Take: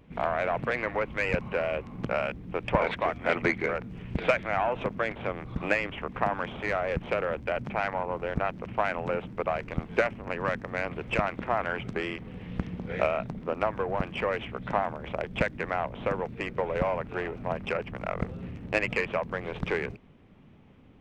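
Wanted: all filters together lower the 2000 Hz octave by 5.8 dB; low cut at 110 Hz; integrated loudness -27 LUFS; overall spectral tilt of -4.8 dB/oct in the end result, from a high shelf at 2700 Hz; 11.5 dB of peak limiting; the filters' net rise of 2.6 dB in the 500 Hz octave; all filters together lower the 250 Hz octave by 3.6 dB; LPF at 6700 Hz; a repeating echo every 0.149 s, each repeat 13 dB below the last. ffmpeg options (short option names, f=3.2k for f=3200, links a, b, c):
-af "highpass=110,lowpass=6.7k,equalizer=f=250:t=o:g=-6.5,equalizer=f=500:t=o:g=5,equalizer=f=2k:t=o:g=-5.5,highshelf=f=2.7k:g=-5,alimiter=limit=-21.5dB:level=0:latency=1,aecho=1:1:149|298|447:0.224|0.0493|0.0108,volume=6.5dB"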